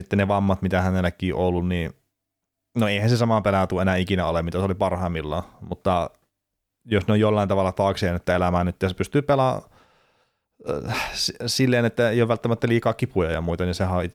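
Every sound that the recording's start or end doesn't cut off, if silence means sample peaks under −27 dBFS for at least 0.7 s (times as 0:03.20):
0:02.76–0:06.07
0:06.91–0:09.59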